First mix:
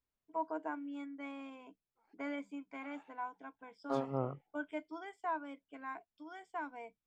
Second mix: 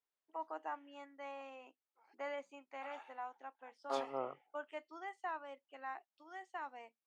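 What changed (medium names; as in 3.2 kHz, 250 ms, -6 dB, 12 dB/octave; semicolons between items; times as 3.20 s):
first voice: remove rippled EQ curve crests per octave 1.7, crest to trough 14 dB; background +6.5 dB; master: add high-pass 500 Hz 12 dB/octave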